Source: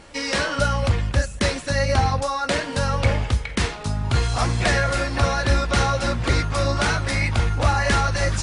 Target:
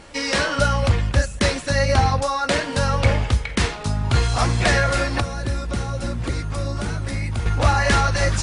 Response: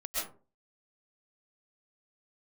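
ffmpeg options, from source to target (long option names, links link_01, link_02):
-filter_complex "[0:a]asettb=1/sr,asplit=3[link_01][link_02][link_03];[link_01]atrim=end=5.204[link_04];[link_02]atrim=start=5.2:end=7.46,asetpts=PTS-STARTPTS,afade=type=in:duration=0.004:curve=qsin,afade=type=out:start_time=2.256:duration=0.004:curve=qsin,acrossover=split=430|7900[link_05][link_06][link_07];[link_05]acompressor=threshold=-24dB:ratio=4[link_08];[link_06]acompressor=threshold=-37dB:ratio=4[link_09];[link_07]acompressor=threshold=-46dB:ratio=4[link_10];[link_08][link_09][link_10]amix=inputs=3:normalize=0[link_11];[link_03]atrim=start=7.456[link_12];[link_04][link_11]acrossfade=duration=0.004:curve1=hsin:curve2=qsin[link_13];[link_13][link_12]acrossfade=duration=0.004:curve1=qsin:curve2=hsin,volume=2dB"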